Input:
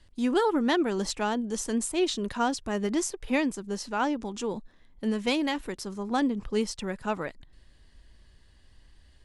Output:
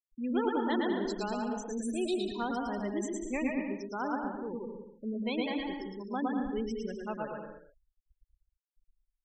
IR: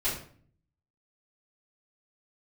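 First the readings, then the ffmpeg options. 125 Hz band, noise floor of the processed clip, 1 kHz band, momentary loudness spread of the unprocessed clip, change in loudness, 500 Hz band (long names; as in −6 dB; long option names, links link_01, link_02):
−6.0 dB, below −85 dBFS, −5.0 dB, 9 LU, −5.5 dB, −5.0 dB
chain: -filter_complex "[0:a]asplit=2[link_01][link_02];[link_02]aecho=0:1:118|236|354:0.668|0.134|0.0267[link_03];[link_01][link_03]amix=inputs=2:normalize=0,afftfilt=real='re*gte(hypot(re,im),0.0562)':imag='im*gte(hypot(re,im),0.0562)':win_size=1024:overlap=0.75,asplit=2[link_04][link_05];[link_05]aecho=0:1:110|192.5|254.4|300.8|335.6:0.631|0.398|0.251|0.158|0.1[link_06];[link_04][link_06]amix=inputs=2:normalize=0,volume=-8.5dB"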